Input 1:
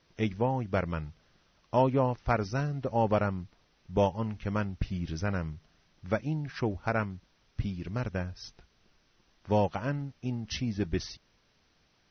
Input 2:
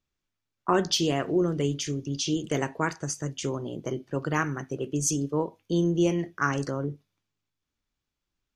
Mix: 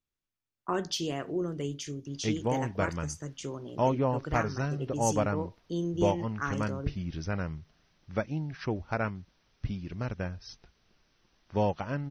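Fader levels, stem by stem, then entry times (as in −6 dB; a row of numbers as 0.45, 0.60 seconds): −1.5, −7.5 decibels; 2.05, 0.00 seconds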